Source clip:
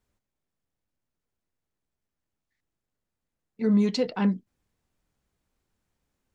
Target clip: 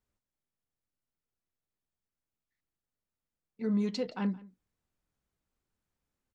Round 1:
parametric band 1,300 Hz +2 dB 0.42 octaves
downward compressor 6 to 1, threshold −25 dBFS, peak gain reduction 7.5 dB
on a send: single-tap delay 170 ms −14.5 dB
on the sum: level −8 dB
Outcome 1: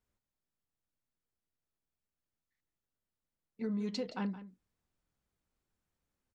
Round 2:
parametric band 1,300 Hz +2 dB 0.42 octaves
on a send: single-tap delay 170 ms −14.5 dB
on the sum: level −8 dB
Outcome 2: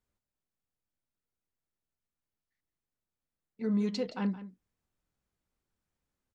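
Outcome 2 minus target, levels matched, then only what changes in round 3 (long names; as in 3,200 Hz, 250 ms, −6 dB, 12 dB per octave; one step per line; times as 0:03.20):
echo-to-direct +7 dB
change: single-tap delay 170 ms −21.5 dB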